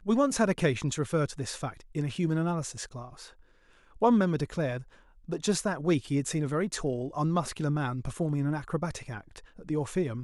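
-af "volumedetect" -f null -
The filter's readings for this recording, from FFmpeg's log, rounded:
mean_volume: -29.8 dB
max_volume: -11.5 dB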